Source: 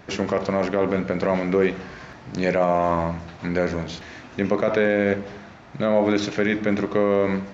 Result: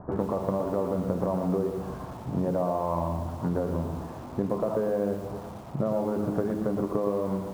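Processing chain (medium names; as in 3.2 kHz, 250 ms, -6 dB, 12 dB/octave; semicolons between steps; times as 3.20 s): steep low-pass 1.1 kHz 36 dB/octave; peaking EQ 410 Hz -5.5 dB 2.8 oct; de-hum 51.73 Hz, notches 9; compression 16:1, threshold -31 dBFS, peak gain reduction 13 dB; on a send: thinning echo 530 ms, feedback 75%, high-pass 460 Hz, level -22.5 dB; on the sum: bit-crushed delay 117 ms, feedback 35%, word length 9-bit, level -7 dB; trim +7.5 dB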